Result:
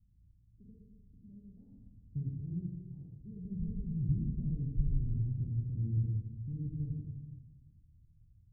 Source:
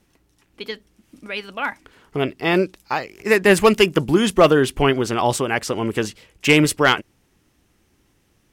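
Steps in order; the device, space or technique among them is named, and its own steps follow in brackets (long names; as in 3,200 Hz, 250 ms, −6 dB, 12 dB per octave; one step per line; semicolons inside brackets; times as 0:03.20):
club heard from the street (brickwall limiter −15 dBFS, peak gain reduction 11 dB; low-pass filter 130 Hz 24 dB per octave; convolution reverb RT60 1.3 s, pre-delay 39 ms, DRR −1 dB)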